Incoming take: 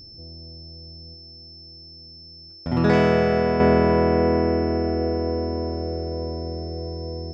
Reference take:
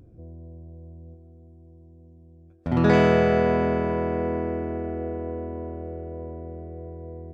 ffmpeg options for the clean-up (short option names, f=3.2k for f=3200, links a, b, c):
-af "bandreject=f=5.3k:w=30,asetnsamples=n=441:p=0,asendcmd='3.6 volume volume -7dB',volume=0dB"